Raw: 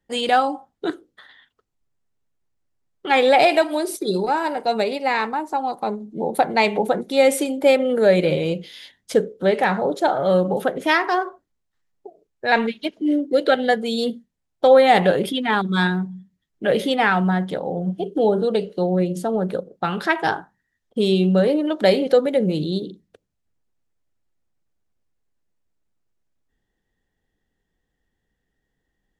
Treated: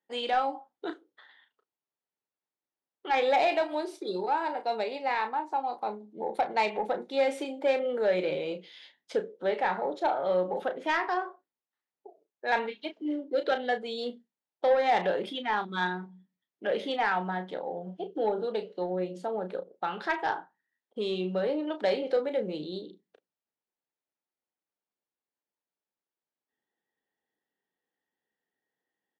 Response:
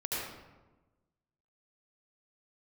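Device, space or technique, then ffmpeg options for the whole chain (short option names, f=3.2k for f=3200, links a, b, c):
intercom: -filter_complex "[0:a]highpass=330,lowpass=4.4k,equalizer=f=880:t=o:w=0.28:g=4.5,asoftclip=type=tanh:threshold=-8dB,asplit=2[a][b];[b]adelay=33,volume=-9dB[c];[a][c]amix=inputs=2:normalize=0,volume=-9dB"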